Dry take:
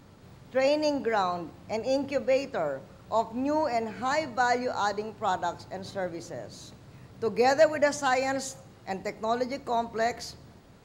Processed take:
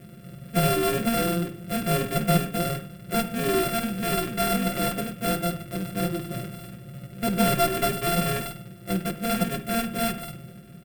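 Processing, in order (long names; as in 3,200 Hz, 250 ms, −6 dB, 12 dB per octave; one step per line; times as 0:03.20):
samples sorted by size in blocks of 64 samples
high-pass filter 83 Hz
high-shelf EQ 5,300 Hz +8.5 dB
phaser with its sweep stopped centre 2,200 Hz, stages 4
in parallel at −5.5 dB: sample-rate reduction 7,600 Hz, jitter 0%
on the sum: tube saturation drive 19 dB, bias 0.25
low-shelf EQ 380 Hz +9 dB
mains-hum notches 50/100/150 Hz
comb filter 5.6 ms, depth 83%
convolution reverb, pre-delay 57 ms, DRR 12 dB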